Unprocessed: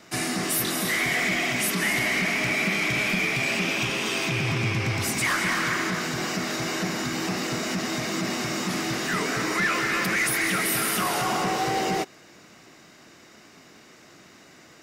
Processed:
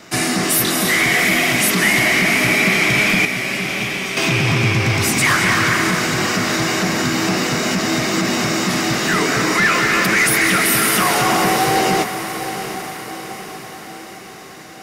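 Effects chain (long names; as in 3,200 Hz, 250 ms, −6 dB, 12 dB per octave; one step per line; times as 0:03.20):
0:03.25–0:04.17: tuned comb filter 190 Hz, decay 0.2 s, harmonics all, mix 80%
feedback delay with all-pass diffusion 772 ms, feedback 53%, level −10 dB
level +9 dB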